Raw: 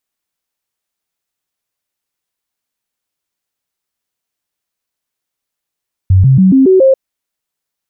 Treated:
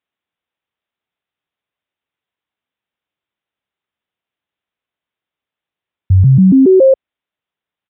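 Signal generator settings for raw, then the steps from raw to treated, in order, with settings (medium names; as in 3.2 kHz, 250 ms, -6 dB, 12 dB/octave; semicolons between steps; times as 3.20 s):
stepped sine 94.1 Hz up, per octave 2, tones 6, 0.14 s, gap 0.00 s -3.5 dBFS
high-pass 56 Hz; resampled via 8 kHz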